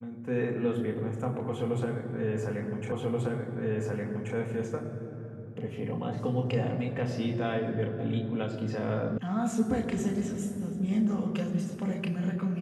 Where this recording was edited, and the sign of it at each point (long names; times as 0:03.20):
0:02.92: the same again, the last 1.43 s
0:09.18: cut off before it has died away